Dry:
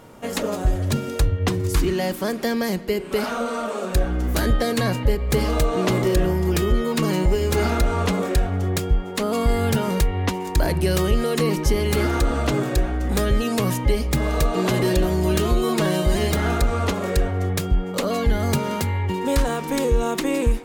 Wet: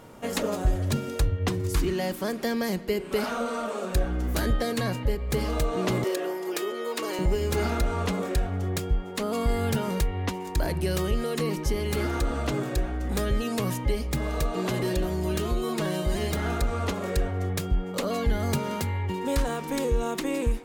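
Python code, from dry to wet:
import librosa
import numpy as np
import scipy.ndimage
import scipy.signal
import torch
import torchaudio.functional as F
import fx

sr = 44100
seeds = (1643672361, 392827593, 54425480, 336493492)

y = fx.highpass(x, sr, hz=340.0, slope=24, at=(6.04, 7.19))
y = fx.rider(y, sr, range_db=5, speed_s=2.0)
y = y * librosa.db_to_amplitude(-6.0)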